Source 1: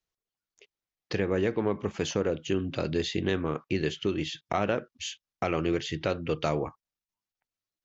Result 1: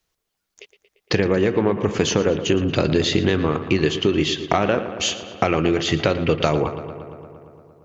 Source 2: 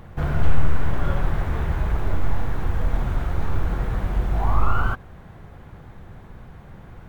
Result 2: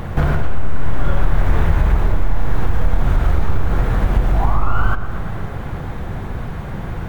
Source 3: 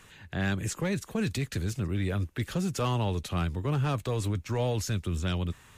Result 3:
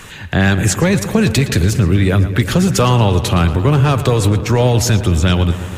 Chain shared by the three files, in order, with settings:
downward compressor 6 to 1, threshold −28 dBFS
feedback echo with a low-pass in the loop 115 ms, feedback 77%, low-pass 3,900 Hz, level −12.5 dB
normalise the peak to −2 dBFS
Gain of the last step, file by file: +13.5, +15.5, +19.0 decibels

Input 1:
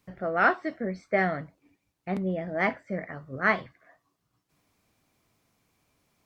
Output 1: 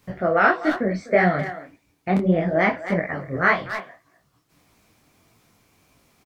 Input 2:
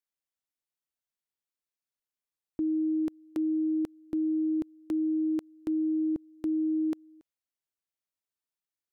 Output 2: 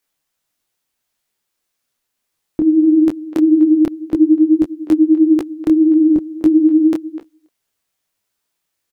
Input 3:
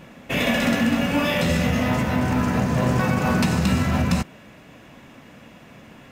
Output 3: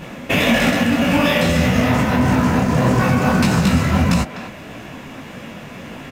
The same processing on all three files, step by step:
far-end echo of a speakerphone 250 ms, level −15 dB
downward compressor 2.5 to 1, threshold −27 dBFS
micro pitch shift up and down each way 58 cents
normalise the peak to −3 dBFS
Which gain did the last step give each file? +14.5, +21.5, +15.0 decibels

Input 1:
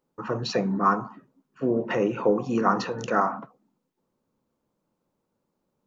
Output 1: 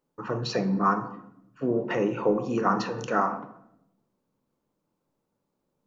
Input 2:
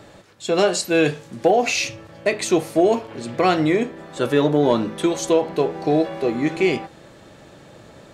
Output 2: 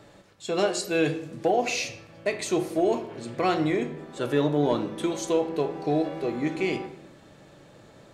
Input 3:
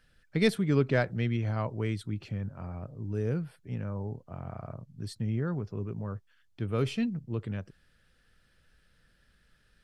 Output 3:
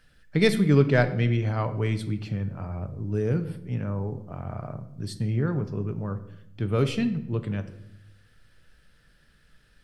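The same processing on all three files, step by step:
rectangular room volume 240 cubic metres, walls mixed, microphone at 0.37 metres
loudness normalisation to −27 LKFS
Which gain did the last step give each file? −2.0, −7.5, +5.0 decibels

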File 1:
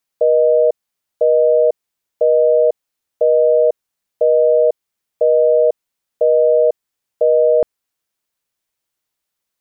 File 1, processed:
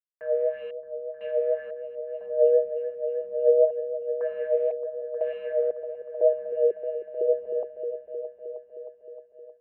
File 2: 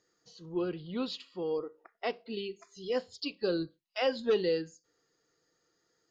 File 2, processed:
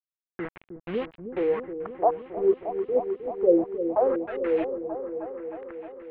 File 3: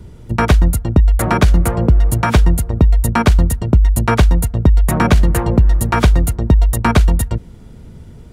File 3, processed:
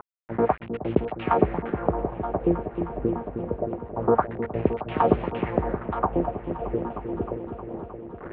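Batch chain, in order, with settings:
running median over 25 samples
high-pass filter 43 Hz 24 dB per octave
dynamic equaliser 760 Hz, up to +6 dB, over −37 dBFS, Q 7.3
upward compression, threshold −21 dBFS
LFO wah 1.9 Hz 380–3,500 Hz, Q 2.7
bit reduction 7 bits
auto-filter low-pass sine 0.25 Hz 380–2,900 Hz
high-frequency loss of the air 490 metres
echo whose low-pass opens from repeat to repeat 311 ms, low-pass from 400 Hz, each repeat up 1 octave, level −6 dB
loudness normalisation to −27 LKFS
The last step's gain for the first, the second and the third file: −7.5, +8.0, +4.0 decibels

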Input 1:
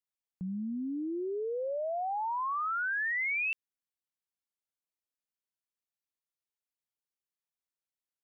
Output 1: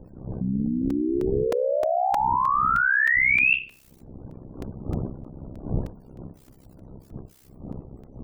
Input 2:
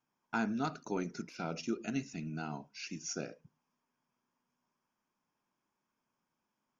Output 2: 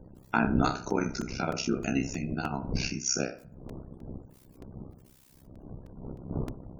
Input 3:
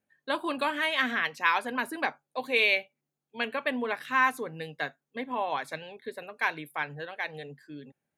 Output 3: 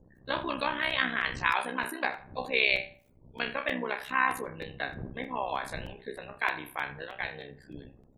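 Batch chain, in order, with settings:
peak hold with a decay on every bin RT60 0.32 s
wind on the microphone 220 Hz −46 dBFS
bit-depth reduction 12 bits, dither triangular
gate on every frequency bin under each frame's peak −30 dB strong
amplitude modulation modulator 65 Hz, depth 75%
high-shelf EQ 4,800 Hz +5.5 dB
feedback echo with a band-pass in the loop 83 ms, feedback 42%, band-pass 910 Hz, level −16 dB
regular buffer underruns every 0.31 s, samples 128, repeat, from 0:00.90
normalise the peak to −9 dBFS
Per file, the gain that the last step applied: +14.0, +10.5, 0.0 decibels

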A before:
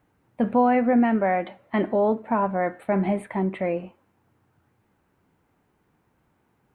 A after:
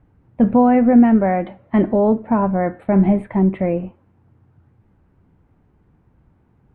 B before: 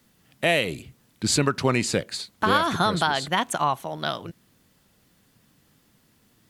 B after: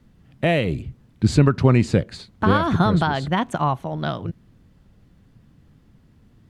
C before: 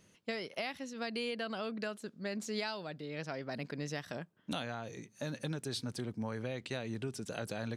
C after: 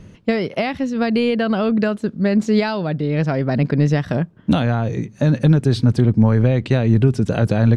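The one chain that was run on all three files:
RIAA equalisation playback
normalise the peak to −3 dBFS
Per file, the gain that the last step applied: +2.0, +0.5, +16.5 decibels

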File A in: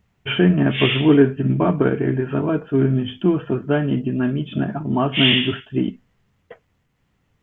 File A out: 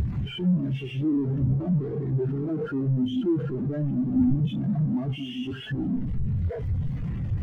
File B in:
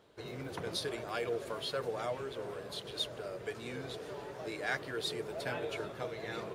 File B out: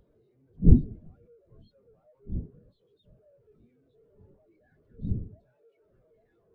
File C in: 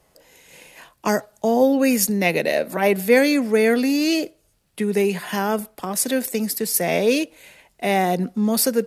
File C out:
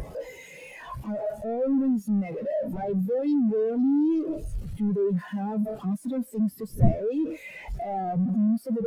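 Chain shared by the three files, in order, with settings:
sign of each sample alone
wind on the microphone 230 Hz −34 dBFS
every bin expanded away from the loudest bin 2.5 to 1
loudness normalisation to −27 LKFS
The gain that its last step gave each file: −1.5, +6.5, −1.5 decibels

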